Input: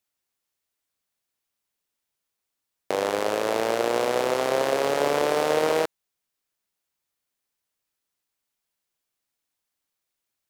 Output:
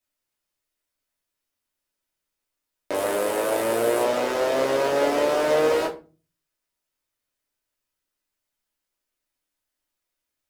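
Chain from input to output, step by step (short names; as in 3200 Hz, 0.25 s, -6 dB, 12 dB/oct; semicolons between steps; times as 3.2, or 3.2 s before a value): 2.94–4.03 resonant high shelf 7400 Hz +8.5 dB, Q 1.5; shoebox room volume 150 m³, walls furnished, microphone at 2.8 m; gain -6 dB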